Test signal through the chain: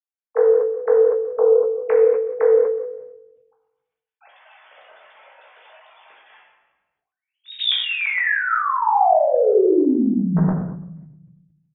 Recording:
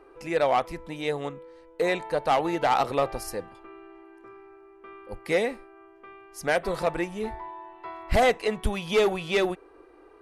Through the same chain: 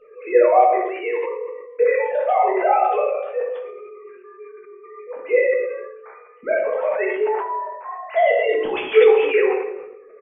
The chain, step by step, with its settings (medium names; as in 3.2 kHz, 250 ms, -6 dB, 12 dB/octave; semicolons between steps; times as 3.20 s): formants replaced by sine waves; in parallel at +1 dB: compression, threshold -31 dBFS; on the sum: early reflections 16 ms -7 dB, 60 ms -14.5 dB; simulated room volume 280 m³, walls mixed, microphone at 1.5 m; decay stretcher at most 52 dB/s; trim -2 dB